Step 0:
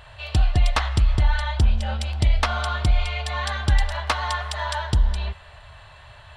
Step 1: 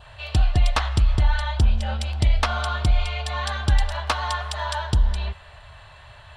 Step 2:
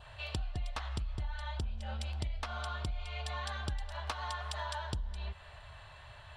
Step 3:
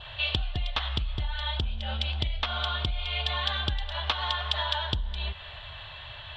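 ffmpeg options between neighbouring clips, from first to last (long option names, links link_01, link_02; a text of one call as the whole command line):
ffmpeg -i in.wav -af "adynamicequalizer=threshold=0.00398:dfrequency=2000:dqfactor=4.8:tfrequency=2000:tqfactor=4.8:attack=5:release=100:ratio=0.375:range=2.5:mode=cutabove:tftype=bell" out.wav
ffmpeg -i in.wav -af "acompressor=threshold=-29dB:ratio=5,volume=-6.5dB" out.wav
ffmpeg -i in.wav -af "lowpass=frequency=3400:width_type=q:width=4.4,volume=6.5dB" out.wav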